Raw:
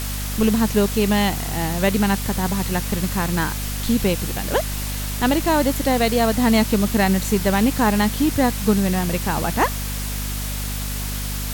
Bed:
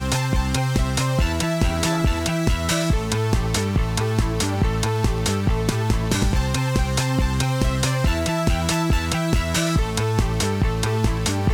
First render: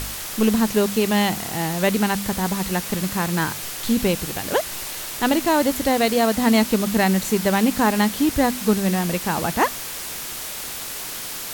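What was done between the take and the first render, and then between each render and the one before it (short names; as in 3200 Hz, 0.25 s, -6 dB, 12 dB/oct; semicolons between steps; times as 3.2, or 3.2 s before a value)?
de-hum 50 Hz, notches 5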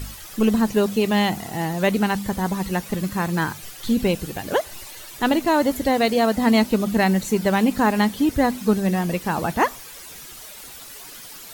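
denoiser 12 dB, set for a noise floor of -32 dBFS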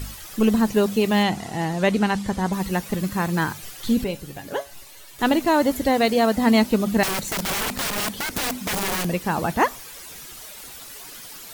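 1.23–2.53 LPF 8800 Hz; 4.04–5.19 resonator 140 Hz, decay 0.22 s, mix 70%; 7.03–9.05 wrapped overs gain 20.5 dB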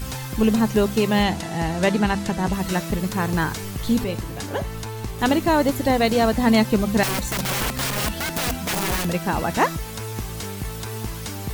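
add bed -10 dB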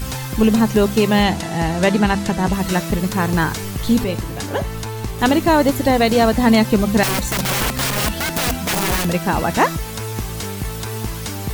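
gain +4.5 dB; limiter -3 dBFS, peak gain reduction 2 dB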